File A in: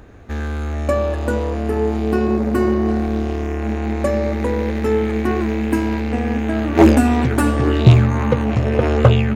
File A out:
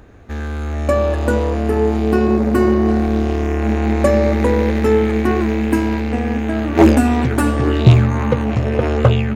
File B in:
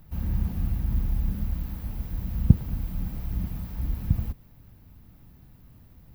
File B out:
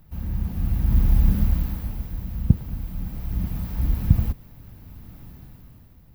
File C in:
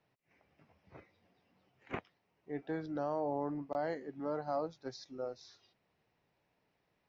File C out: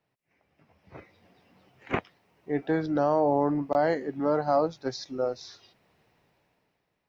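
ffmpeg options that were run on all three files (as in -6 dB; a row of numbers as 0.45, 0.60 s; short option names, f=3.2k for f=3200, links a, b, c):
-af "dynaudnorm=f=160:g=11:m=13dB,volume=-1dB"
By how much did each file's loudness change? +2.0, +4.0, +12.0 LU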